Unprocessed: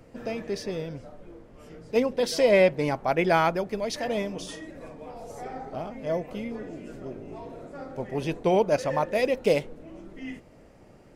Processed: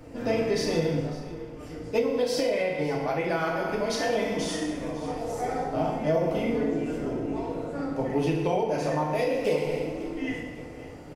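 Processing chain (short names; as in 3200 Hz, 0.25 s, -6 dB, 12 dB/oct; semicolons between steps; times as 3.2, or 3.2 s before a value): FDN reverb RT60 1.1 s, low-frequency decay 1.05×, high-frequency decay 0.85×, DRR -3.5 dB; compressor, threshold -22 dBFS, peak gain reduction 11 dB; feedback echo 0.55 s, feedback 38%, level -17.5 dB; vocal rider within 4 dB 2 s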